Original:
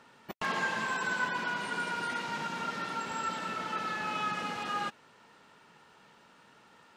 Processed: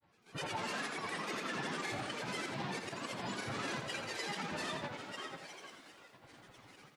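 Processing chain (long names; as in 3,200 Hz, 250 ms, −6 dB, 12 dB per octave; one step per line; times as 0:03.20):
notch filter 1,000 Hz, Q 5.3
gate pattern "..xx.xxxx.x" 164 BPM −12 dB
phase-vocoder pitch shift with formants kept +3 semitones
bass and treble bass +8 dB, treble +4 dB
on a send: echo with shifted repeats 419 ms, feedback 44%, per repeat +75 Hz, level −11.5 dB
on the sum: brickwall limiter −31.5 dBFS, peak gain reduction 12 dB
mains-hum notches 60/120/180/240 Hz
granular cloud 100 ms, pitch spread up and down by 12 semitones
Butterworth low-pass 11,000 Hz 36 dB per octave
parametric band 61 Hz −4 dB 1.1 octaves
feedback echo at a low word length 84 ms, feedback 35%, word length 12 bits, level −6.5 dB
level +1.5 dB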